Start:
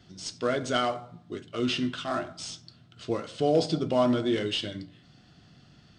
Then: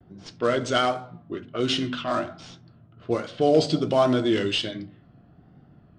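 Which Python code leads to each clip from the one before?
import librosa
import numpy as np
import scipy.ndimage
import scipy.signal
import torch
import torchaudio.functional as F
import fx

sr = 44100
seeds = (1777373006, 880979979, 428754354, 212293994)

y = fx.hum_notches(x, sr, base_hz=50, count=5)
y = fx.env_lowpass(y, sr, base_hz=850.0, full_db=-25.0)
y = fx.vibrato(y, sr, rate_hz=1.3, depth_cents=80.0)
y = F.gain(torch.from_numpy(y), 4.5).numpy()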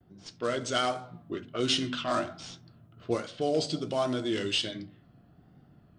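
y = fx.rider(x, sr, range_db=4, speed_s=0.5)
y = fx.high_shelf(y, sr, hz=4900.0, db=11.5)
y = F.gain(torch.from_numpy(y), -6.5).numpy()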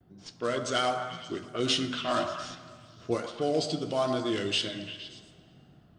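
y = fx.echo_stepped(x, sr, ms=116, hz=870.0, octaves=0.7, feedback_pct=70, wet_db=-5.5)
y = fx.rev_plate(y, sr, seeds[0], rt60_s=2.6, hf_ratio=0.75, predelay_ms=0, drr_db=13.5)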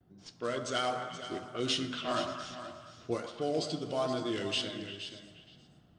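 y = x + 10.0 ** (-11.5 / 20.0) * np.pad(x, (int(477 * sr / 1000.0), 0))[:len(x)]
y = F.gain(torch.from_numpy(y), -4.5).numpy()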